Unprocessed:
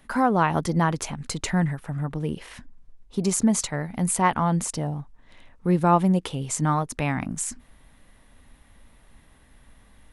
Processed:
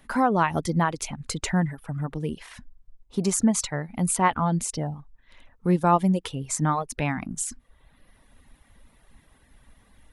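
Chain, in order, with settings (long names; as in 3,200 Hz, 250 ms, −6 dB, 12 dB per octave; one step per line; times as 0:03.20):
reverb reduction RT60 0.82 s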